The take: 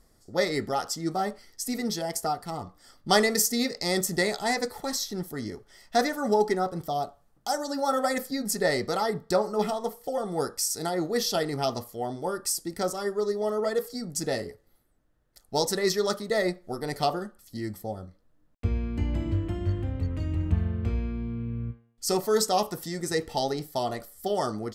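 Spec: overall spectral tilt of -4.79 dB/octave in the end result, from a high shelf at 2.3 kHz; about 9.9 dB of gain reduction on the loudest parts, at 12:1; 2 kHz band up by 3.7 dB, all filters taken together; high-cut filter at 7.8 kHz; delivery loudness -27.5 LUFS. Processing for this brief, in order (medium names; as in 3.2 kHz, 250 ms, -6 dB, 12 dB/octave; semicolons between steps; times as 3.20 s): low-pass 7.8 kHz; peaking EQ 2 kHz +6 dB; treble shelf 2.3 kHz -4.5 dB; compression 12:1, threshold -27 dBFS; trim +6 dB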